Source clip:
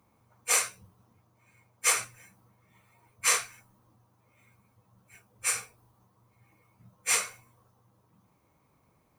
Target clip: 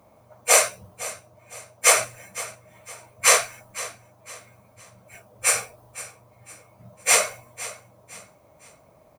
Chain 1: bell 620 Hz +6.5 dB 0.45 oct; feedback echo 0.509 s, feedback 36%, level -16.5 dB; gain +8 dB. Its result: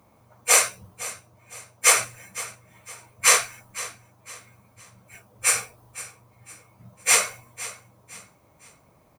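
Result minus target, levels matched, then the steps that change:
500 Hz band -5.5 dB
change: bell 620 Hz +16.5 dB 0.45 oct

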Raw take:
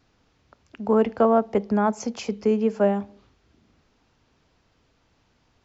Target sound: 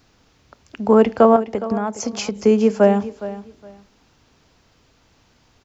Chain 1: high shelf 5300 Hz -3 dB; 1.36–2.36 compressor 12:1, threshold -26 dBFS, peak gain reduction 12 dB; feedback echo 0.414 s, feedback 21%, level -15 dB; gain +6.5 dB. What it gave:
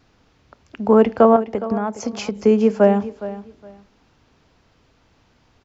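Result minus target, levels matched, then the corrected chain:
8000 Hz band -6.0 dB
high shelf 5300 Hz +8 dB; 1.36–2.36 compressor 12:1, threshold -26 dBFS, peak gain reduction 12 dB; feedback echo 0.414 s, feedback 21%, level -15 dB; gain +6.5 dB

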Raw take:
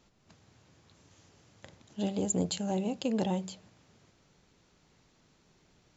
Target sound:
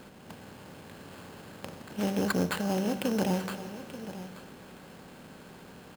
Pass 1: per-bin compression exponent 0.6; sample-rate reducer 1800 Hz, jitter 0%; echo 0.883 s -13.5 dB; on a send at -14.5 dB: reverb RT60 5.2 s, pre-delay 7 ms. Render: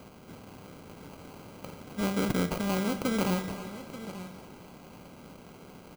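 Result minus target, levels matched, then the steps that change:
sample-rate reducer: distortion +5 dB
change: sample-rate reducer 5800 Hz, jitter 0%

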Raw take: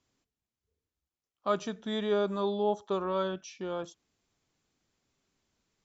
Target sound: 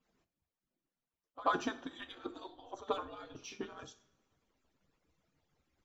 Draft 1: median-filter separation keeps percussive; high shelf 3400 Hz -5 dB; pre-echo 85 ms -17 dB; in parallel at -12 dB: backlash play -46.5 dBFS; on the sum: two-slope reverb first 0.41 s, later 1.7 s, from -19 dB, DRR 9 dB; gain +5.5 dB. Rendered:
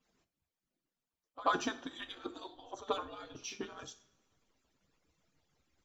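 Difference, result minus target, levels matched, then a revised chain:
8000 Hz band +5.5 dB
median-filter separation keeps percussive; high shelf 3400 Hz -12.5 dB; pre-echo 85 ms -17 dB; in parallel at -12 dB: backlash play -46.5 dBFS; on the sum: two-slope reverb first 0.41 s, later 1.7 s, from -19 dB, DRR 9 dB; gain +5.5 dB

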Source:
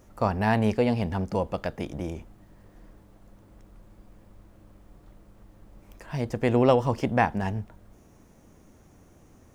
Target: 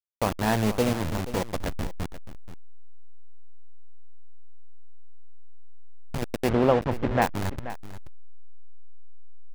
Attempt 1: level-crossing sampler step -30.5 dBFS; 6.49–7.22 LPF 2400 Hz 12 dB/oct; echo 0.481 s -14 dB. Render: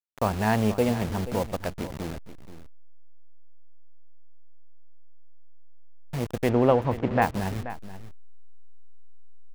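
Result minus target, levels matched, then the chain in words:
level-crossing sampler: distortion -9 dB
level-crossing sampler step -22 dBFS; 6.49–7.22 LPF 2400 Hz 12 dB/oct; echo 0.481 s -14 dB

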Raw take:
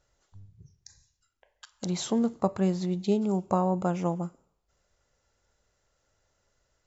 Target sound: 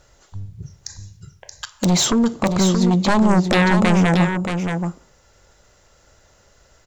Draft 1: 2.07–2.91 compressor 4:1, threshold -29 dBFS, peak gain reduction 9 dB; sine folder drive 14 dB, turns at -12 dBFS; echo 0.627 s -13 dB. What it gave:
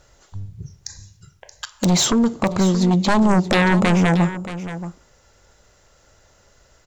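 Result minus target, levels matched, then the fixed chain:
echo-to-direct -6.5 dB
2.07–2.91 compressor 4:1, threshold -29 dBFS, peak gain reduction 9 dB; sine folder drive 14 dB, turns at -12 dBFS; echo 0.627 s -6.5 dB

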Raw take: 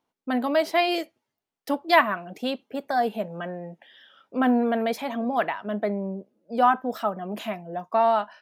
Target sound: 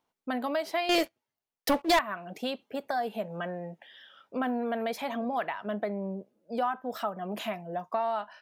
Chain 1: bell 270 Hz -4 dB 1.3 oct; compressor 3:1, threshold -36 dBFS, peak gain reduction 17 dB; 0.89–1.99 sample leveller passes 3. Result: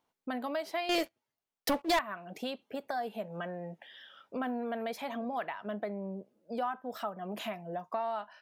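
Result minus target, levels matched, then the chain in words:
compressor: peak gain reduction +4.5 dB
bell 270 Hz -4 dB 1.3 oct; compressor 3:1, threshold -29 dBFS, peak gain reduction 12.5 dB; 0.89–1.99 sample leveller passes 3

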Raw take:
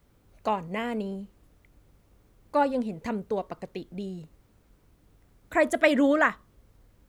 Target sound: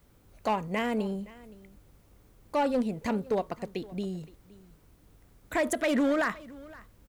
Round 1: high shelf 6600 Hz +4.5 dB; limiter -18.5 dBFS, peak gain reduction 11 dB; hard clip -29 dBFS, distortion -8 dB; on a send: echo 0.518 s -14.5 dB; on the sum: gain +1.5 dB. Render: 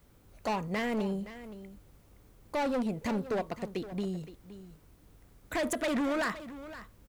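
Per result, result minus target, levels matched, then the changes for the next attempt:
hard clip: distortion +10 dB; echo-to-direct +6.5 dB
change: hard clip -22.5 dBFS, distortion -17 dB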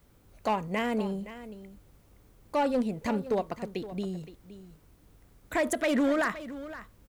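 echo-to-direct +6.5 dB
change: echo 0.518 s -21 dB

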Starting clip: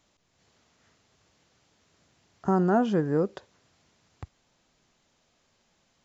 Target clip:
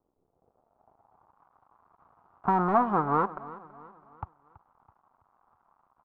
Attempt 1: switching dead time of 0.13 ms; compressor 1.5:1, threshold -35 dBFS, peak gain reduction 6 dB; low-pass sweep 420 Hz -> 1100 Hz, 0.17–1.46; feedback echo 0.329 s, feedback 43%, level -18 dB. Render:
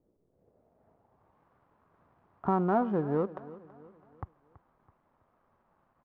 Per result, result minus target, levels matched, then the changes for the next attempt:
switching dead time: distortion -14 dB; 1000 Hz band -4.5 dB
change: switching dead time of 0.44 ms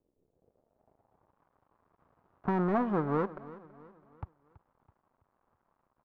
1000 Hz band -5.5 dB
add after compressor: band shelf 1000 Hz +10.5 dB 1.2 oct

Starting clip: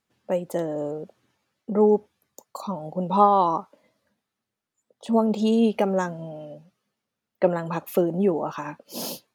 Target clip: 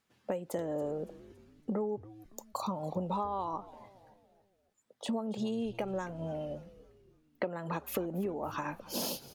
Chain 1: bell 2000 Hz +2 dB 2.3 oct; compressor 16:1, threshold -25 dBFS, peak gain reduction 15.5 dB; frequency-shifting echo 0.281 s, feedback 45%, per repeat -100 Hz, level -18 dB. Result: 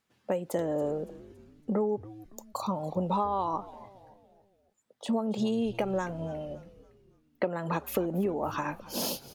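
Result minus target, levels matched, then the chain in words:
compressor: peak gain reduction -5.5 dB
bell 2000 Hz +2 dB 2.3 oct; compressor 16:1, threshold -31 dBFS, peak gain reduction 21 dB; frequency-shifting echo 0.281 s, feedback 45%, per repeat -100 Hz, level -18 dB

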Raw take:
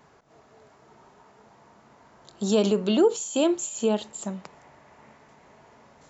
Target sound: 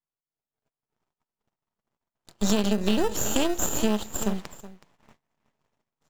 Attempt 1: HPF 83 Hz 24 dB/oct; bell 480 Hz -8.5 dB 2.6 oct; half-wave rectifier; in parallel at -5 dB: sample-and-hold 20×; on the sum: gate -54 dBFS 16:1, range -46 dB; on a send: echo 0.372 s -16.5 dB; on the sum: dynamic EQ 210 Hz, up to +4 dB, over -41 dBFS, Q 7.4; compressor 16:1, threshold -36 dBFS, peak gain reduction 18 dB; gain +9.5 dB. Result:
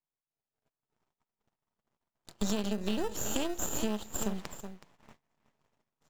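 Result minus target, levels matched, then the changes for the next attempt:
compressor: peak gain reduction +9 dB
change: compressor 16:1, threshold -26.5 dBFS, peak gain reduction 9.5 dB

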